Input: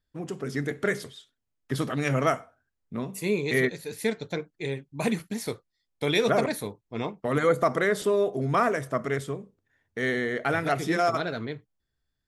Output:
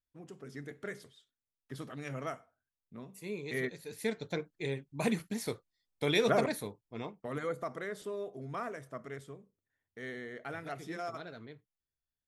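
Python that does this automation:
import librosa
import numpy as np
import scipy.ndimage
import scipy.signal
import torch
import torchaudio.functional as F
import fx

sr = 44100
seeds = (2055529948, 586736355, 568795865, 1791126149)

y = fx.gain(x, sr, db=fx.line((3.18, -15.0), (4.34, -4.5), (6.41, -4.5), (7.68, -15.5)))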